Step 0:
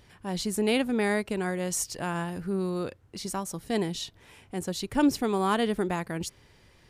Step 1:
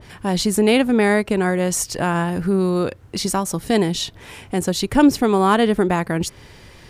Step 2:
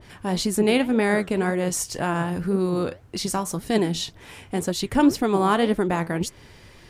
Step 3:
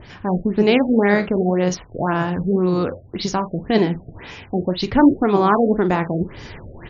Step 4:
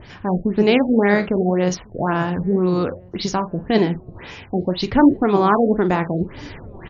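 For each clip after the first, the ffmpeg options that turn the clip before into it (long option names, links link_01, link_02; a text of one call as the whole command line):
ffmpeg -i in.wav -filter_complex "[0:a]asplit=2[link_01][link_02];[link_02]acompressor=threshold=-35dB:ratio=6,volume=1dB[link_03];[link_01][link_03]amix=inputs=2:normalize=0,adynamicequalizer=threshold=0.00891:dfrequency=2500:dqfactor=0.7:tfrequency=2500:tqfactor=0.7:attack=5:release=100:ratio=0.375:range=2:mode=cutabove:tftype=highshelf,volume=8dB" out.wav
ffmpeg -i in.wav -af "flanger=delay=2.8:depth=9.5:regen=73:speed=1.9:shape=sinusoidal" out.wav
ffmpeg -i in.wav -filter_complex "[0:a]areverse,acompressor=mode=upward:threshold=-31dB:ratio=2.5,areverse,asplit=2[link_01][link_02];[link_02]adelay=44,volume=-12.5dB[link_03];[link_01][link_03]amix=inputs=2:normalize=0,afftfilt=real='re*lt(b*sr/1024,710*pow(7200/710,0.5+0.5*sin(2*PI*1.9*pts/sr)))':imag='im*lt(b*sr/1024,710*pow(7200/710,0.5+0.5*sin(2*PI*1.9*pts/sr)))':win_size=1024:overlap=0.75,volume=4.5dB" out.wav
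ffmpeg -i in.wav -filter_complex "[0:a]asplit=2[link_01][link_02];[link_02]adelay=1399,volume=-29dB,highshelf=frequency=4000:gain=-31.5[link_03];[link_01][link_03]amix=inputs=2:normalize=0" out.wav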